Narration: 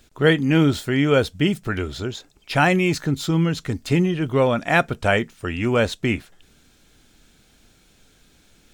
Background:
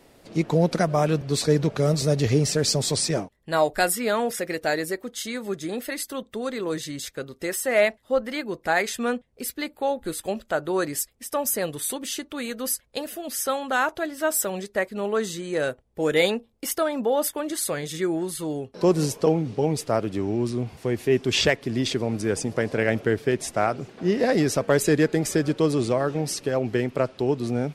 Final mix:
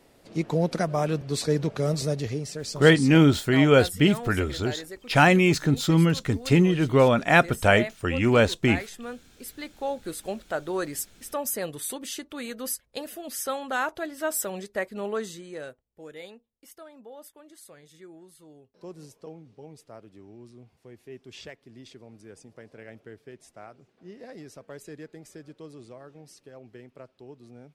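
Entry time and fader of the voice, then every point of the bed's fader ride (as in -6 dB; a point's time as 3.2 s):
2.60 s, 0.0 dB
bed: 2.04 s -4 dB
2.44 s -12 dB
9.2 s -12 dB
9.94 s -4.5 dB
15.11 s -4.5 dB
16.17 s -22.5 dB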